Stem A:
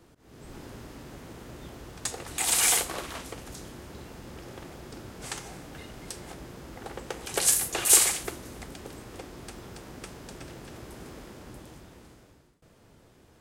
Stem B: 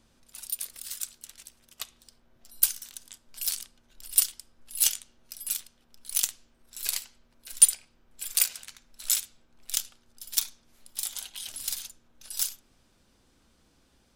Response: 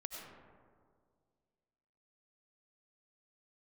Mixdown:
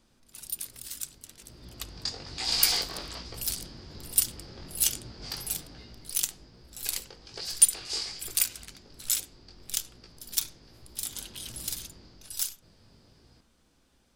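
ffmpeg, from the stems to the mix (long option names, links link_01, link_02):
-filter_complex "[0:a]lowpass=frequency=4800:width_type=q:width=9,lowshelf=frequency=210:gain=9.5,flanger=delay=16.5:depth=5.9:speed=1.2,volume=4.5dB,afade=type=in:start_time=1.36:duration=0.6:silence=0.237137,afade=type=out:start_time=5.51:duration=0.66:silence=0.354813,afade=type=in:start_time=10.96:duration=0.67:silence=0.354813[link_01];[1:a]volume=-2dB[link_02];[link_01][link_02]amix=inputs=2:normalize=0"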